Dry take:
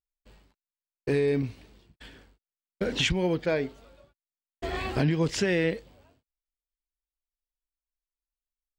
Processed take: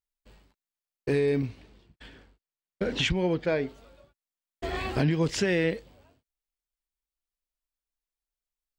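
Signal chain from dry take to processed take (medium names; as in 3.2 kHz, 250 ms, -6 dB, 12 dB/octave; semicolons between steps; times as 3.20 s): 1.46–3.68 s: treble shelf 7.5 kHz -10 dB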